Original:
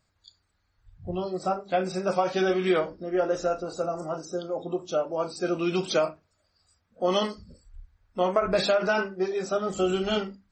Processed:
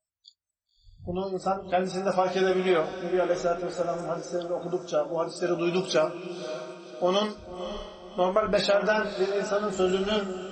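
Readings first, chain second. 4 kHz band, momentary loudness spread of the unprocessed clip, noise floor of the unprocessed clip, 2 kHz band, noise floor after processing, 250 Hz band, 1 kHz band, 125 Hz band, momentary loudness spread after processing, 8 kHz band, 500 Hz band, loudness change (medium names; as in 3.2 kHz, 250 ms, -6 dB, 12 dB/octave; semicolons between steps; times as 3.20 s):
+0.5 dB, 9 LU, -73 dBFS, +0.5 dB, -84 dBFS, +0.5 dB, +0.5 dB, +0.5 dB, 12 LU, +0.5 dB, +0.5 dB, 0.0 dB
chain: spectral noise reduction 27 dB; echo that smears into a reverb 561 ms, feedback 42%, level -10.5 dB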